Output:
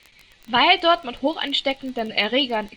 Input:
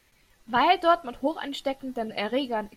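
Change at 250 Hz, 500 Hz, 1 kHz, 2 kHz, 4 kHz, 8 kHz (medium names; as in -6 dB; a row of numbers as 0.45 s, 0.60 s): +4.0 dB, +3.5 dB, +3.0 dB, +9.0 dB, +13.5 dB, no reading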